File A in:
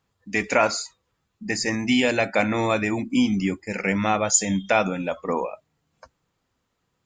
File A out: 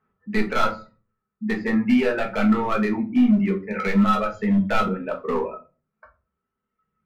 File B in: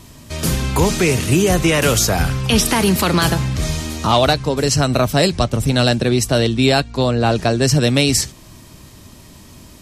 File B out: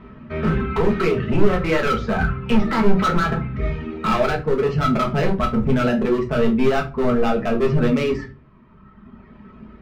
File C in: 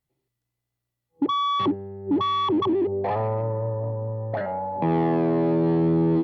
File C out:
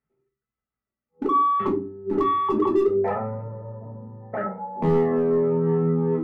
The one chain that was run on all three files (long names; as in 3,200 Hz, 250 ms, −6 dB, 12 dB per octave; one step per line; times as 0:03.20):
low-pass filter 2,000 Hz 24 dB per octave
tilt shelving filter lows −7.5 dB, about 720 Hz
hollow resonant body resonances 210/390/1,300 Hz, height 14 dB, ringing for 50 ms
in parallel at −2.5 dB: brickwall limiter −9.5 dBFS
on the sum: reverb reduction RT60 1.9 s
high-pass filter 50 Hz 6 dB per octave
hard clipping −10.5 dBFS
low-shelf EQ 110 Hz +10 dB
rectangular room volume 140 cubic metres, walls furnished, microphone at 1.5 metres
level −10 dB